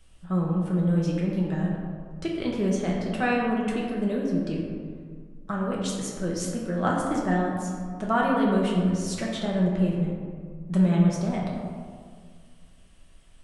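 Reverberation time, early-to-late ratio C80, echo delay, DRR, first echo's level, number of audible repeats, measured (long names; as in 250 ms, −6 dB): 1.9 s, 2.5 dB, no echo audible, −3.5 dB, no echo audible, no echo audible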